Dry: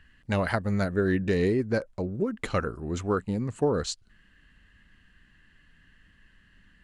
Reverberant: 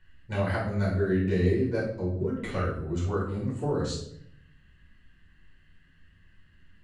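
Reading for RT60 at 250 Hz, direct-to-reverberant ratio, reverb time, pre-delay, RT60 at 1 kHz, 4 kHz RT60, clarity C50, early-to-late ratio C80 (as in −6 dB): 1.0 s, −7.0 dB, 0.70 s, 5 ms, 0.60 s, 0.55 s, 3.5 dB, 8.0 dB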